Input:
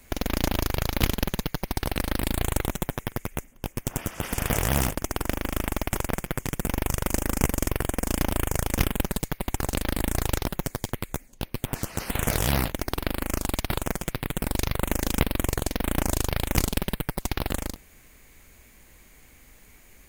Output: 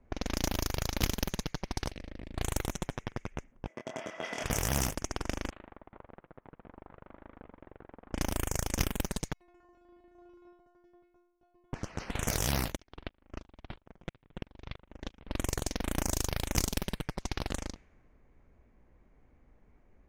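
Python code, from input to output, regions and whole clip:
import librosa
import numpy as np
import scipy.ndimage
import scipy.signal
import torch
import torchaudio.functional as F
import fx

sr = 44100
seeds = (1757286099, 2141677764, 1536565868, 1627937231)

y = fx.chain(x, sr, fx.band_shelf(hz=1100.0, db=-8.5, octaves=1.2),
    fx.level_steps(step_db=12), at=(1.91, 2.37))
y = fx.chain(y, sr, fx.highpass(hz=300.0, slope=12),
    fx.doubler(ms=25.0, db=-5.0),
    fx.small_body(hz=(640.0, 2000.0, 3300.0), ring_ms=55, db=13), at=(3.67, 4.44))
y = fx.chain(y, sr, fx.low_shelf(hz=220.0, db=-12.0),
    fx.level_steps(step_db=21),
    fx.resample_linear(factor=8), at=(5.5, 8.13))
y = fx.chain(y, sr, fx.low_shelf(hz=180.0, db=-8.0),
    fx.stiff_resonator(f0_hz=350.0, decay_s=0.77, stiffness=0.002), at=(9.33, 11.73))
y = fx.chain(y, sr, fx.peak_eq(hz=3400.0, db=10.5, octaves=0.98),
    fx.level_steps(step_db=13),
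    fx.tremolo_decay(direction='swelling', hz=3.0, depth_db=29), at=(12.76, 15.28))
y = fx.env_lowpass(y, sr, base_hz=850.0, full_db=-20.5)
y = fx.peak_eq(y, sr, hz=5900.0, db=9.0, octaves=0.55)
y = y * 10.0 ** (-7.0 / 20.0)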